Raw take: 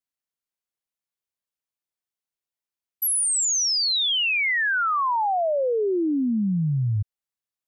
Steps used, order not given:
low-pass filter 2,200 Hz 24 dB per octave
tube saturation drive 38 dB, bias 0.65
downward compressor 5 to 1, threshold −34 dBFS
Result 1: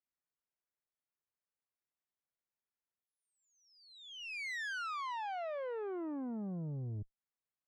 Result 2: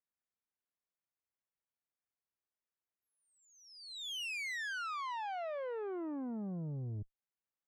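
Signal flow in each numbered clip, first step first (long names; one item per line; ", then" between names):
downward compressor, then low-pass filter, then tube saturation
low-pass filter, then downward compressor, then tube saturation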